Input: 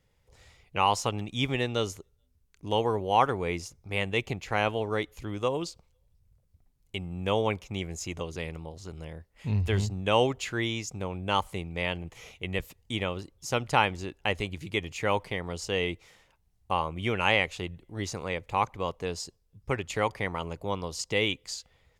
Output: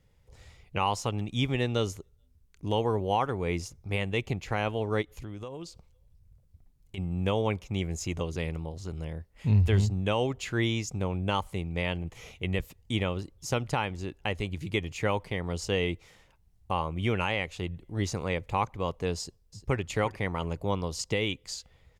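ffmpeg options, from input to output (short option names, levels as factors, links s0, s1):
-filter_complex "[0:a]asplit=3[s0][s1][s2];[s0]afade=t=out:st=5.01:d=0.02[s3];[s1]acompressor=threshold=0.00708:ratio=3:attack=3.2:release=140:knee=1:detection=peak,afade=t=in:st=5.01:d=0.02,afade=t=out:st=6.97:d=0.02[s4];[s2]afade=t=in:st=6.97:d=0.02[s5];[s3][s4][s5]amix=inputs=3:normalize=0,asplit=2[s6][s7];[s7]afade=t=in:st=19.17:d=0.01,afade=t=out:st=19.8:d=0.01,aecho=0:1:350|700:0.188365|0.0282547[s8];[s6][s8]amix=inputs=2:normalize=0,lowshelf=f=300:g=6.5,alimiter=limit=0.178:level=0:latency=1:release=462"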